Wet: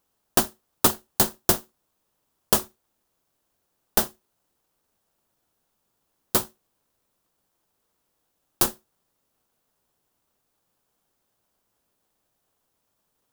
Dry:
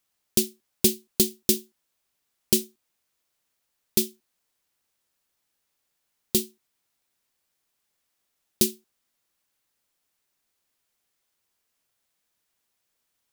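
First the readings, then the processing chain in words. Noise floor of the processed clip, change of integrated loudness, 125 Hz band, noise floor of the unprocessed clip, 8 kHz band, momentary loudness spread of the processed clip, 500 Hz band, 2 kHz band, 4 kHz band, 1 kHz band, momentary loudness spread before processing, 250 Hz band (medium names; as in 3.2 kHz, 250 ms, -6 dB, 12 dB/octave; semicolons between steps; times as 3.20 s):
-76 dBFS, +1.0 dB, +2.0 dB, -78 dBFS, 0.0 dB, 5 LU, +0.5 dB, +10.0 dB, -0.5 dB, +24.0 dB, 4 LU, -3.0 dB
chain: tilt EQ +2 dB/octave; in parallel at -3.5 dB: sample-rate reducer 2.3 kHz, jitter 20%; on the sum: trim -6 dB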